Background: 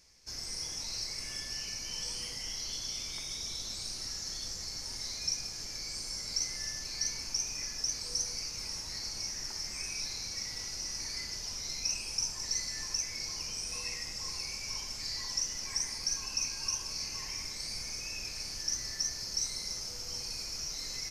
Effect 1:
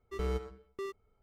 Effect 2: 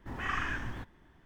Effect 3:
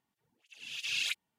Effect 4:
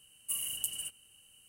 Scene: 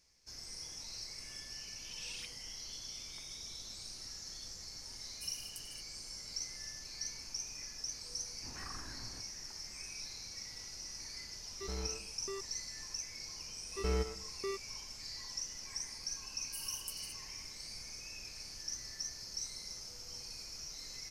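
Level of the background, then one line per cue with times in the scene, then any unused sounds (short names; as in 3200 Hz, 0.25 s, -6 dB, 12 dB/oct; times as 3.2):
background -8 dB
1.13 add 3 -16 dB
4.92 add 4 -10.5 dB + high shelf 8900 Hz -9.5 dB
8.37 add 2 -11.5 dB + treble ducked by the level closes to 1100 Hz, closed at -31 dBFS
11.49 add 1 -10 dB + sample leveller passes 2
13.65 add 1
16.24 add 4 -10.5 dB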